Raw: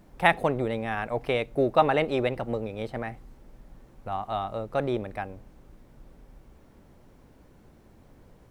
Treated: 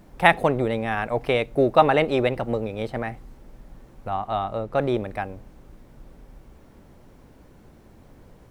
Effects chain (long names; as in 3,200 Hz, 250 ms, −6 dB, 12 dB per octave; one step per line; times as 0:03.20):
0:04.10–0:04.81: high-shelf EQ 5,000 Hz −6.5 dB
level +4.5 dB